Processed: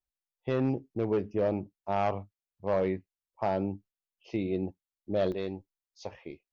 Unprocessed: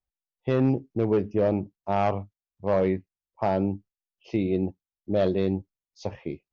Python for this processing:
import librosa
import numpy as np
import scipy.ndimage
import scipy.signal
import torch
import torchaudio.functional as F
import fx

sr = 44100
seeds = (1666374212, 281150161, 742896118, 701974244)

y = fx.peak_eq(x, sr, hz=140.0, db=fx.steps((0.0, -3.5), (5.32, -11.0)), octaves=2.8)
y = y * librosa.db_to_amplitude(-3.5)